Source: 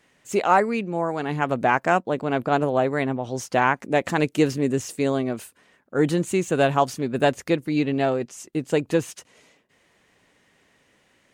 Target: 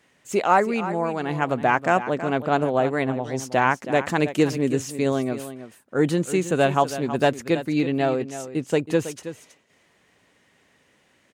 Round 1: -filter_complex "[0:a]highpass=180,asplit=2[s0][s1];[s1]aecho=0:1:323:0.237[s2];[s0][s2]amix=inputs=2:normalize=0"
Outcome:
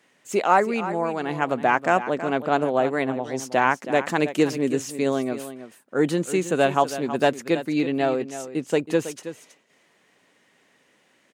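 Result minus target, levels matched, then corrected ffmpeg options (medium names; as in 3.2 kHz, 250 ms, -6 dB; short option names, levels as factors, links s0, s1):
125 Hz band -4.5 dB
-filter_complex "[0:a]highpass=46,asplit=2[s0][s1];[s1]aecho=0:1:323:0.237[s2];[s0][s2]amix=inputs=2:normalize=0"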